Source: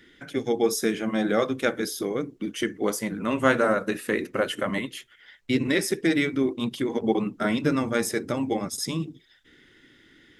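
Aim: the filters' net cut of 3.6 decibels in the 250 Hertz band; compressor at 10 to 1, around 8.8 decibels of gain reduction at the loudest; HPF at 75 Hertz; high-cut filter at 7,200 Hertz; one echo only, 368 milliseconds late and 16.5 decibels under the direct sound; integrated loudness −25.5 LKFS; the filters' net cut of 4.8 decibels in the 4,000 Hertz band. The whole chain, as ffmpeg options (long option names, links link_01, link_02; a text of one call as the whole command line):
ffmpeg -i in.wav -af "highpass=75,lowpass=7200,equalizer=frequency=250:width_type=o:gain=-4.5,equalizer=frequency=4000:width_type=o:gain=-6,acompressor=threshold=-26dB:ratio=10,aecho=1:1:368:0.15,volume=7dB" out.wav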